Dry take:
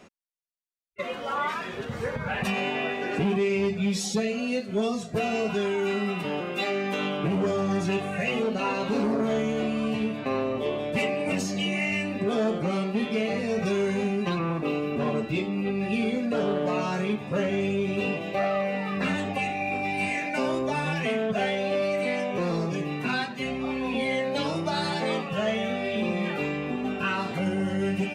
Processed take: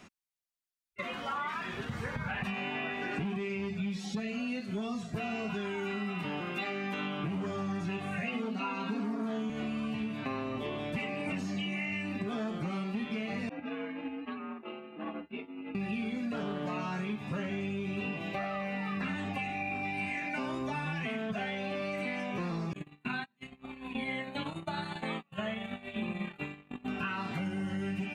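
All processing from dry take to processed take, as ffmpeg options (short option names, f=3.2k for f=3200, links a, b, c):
-filter_complex "[0:a]asettb=1/sr,asplit=3[a][b][c];[a]atrim=end=8.234[d];[b]atrim=start=8.23:end=9.5,asetpts=PTS-STARTPTS,afade=t=in:d=0.004:c=qsin,afade=t=out:st=1.266:d=0.004:c=qsin,highpass=f=170:w=0.5412,highpass=f=170:w=1.3066,aecho=1:1:4.3:0.82,atrim=end_sample=56007[e];[c]atrim=start=9.496[f];[d][e]acrossfade=d=0.004:c1=hsin:c2=qsin[g];[g][f]acrossfade=d=0.004:c1=qsin:c2=hsin,asettb=1/sr,asplit=3[h][i][j];[h]atrim=end=13.494[k];[i]atrim=start=13.49:end=15.75,asetpts=PTS-STARTPTS,afade=t=in:d=0.004:c=qsin,afade=t=out:st=2.256:d=0.004:c=qsin,lowpass=f=2.7k:w=0.5412,lowpass=f=2.7k:w=1.3066,agate=range=-33dB:threshold=-20dB:ratio=3:release=100:detection=peak,afreqshift=71[l];[j]atrim=start=15.746[m];[k][l]acrossfade=d=0.004:c1=hsin:c2=qsin[n];[n][m]acrossfade=d=0.004:c1=qsin:c2=hsin,asettb=1/sr,asplit=3[o][p][q];[o]atrim=end=22.734[r];[p]atrim=start=22.73:end=26.88,asetpts=PTS-STARTPTS,afade=t=in:d=0.004:c=qsin,afade=t=out:st=4.146:d=0.004:c=qsin,asuperstop=centerf=5400:order=8:qfactor=2.5,agate=range=-38dB:threshold=-28dB:ratio=16:release=100:detection=peak[s];[q]atrim=start=26.876[t];[r][s]acrossfade=d=0.004:c1=hsin:c2=qsin[u];[u][t]acrossfade=d=0.004:c1=qsin:c2=hsin,acrossover=split=3300[v][w];[w]acompressor=threshold=-51dB:ratio=4:attack=1:release=60[x];[v][x]amix=inputs=2:normalize=0,equalizer=f=500:t=o:w=0.85:g=-11,acompressor=threshold=-32dB:ratio=6"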